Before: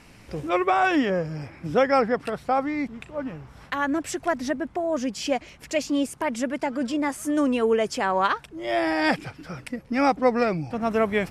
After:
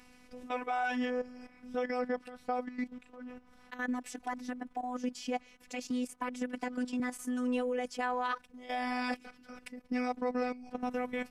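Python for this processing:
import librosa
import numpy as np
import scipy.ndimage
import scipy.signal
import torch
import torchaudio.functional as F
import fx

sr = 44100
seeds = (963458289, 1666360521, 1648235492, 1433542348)

y = fx.level_steps(x, sr, step_db=13)
y = fx.robotise(y, sr, hz=249.0)
y = fx.band_squash(y, sr, depth_pct=70, at=(5.9, 7.0))
y = y * librosa.db_to_amplitude(-4.5)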